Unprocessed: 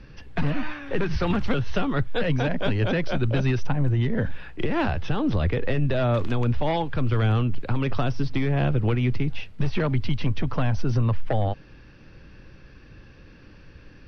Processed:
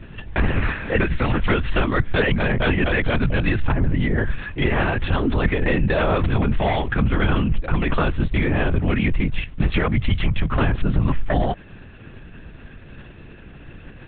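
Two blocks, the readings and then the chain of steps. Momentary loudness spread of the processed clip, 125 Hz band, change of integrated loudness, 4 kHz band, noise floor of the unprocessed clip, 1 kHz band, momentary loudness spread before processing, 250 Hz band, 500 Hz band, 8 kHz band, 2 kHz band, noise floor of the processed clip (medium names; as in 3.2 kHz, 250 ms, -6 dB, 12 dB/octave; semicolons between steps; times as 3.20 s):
3 LU, +1.5 dB, +4.0 dB, +5.0 dB, -49 dBFS, +5.0 dB, 6 LU, +3.5 dB, +3.5 dB, no reading, +9.0 dB, -42 dBFS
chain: dynamic bell 1.9 kHz, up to +7 dB, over -46 dBFS, Q 1.4; in parallel at +1 dB: compression, threshold -31 dBFS, peak gain reduction 13.5 dB; on the sum: LPC vocoder at 8 kHz whisper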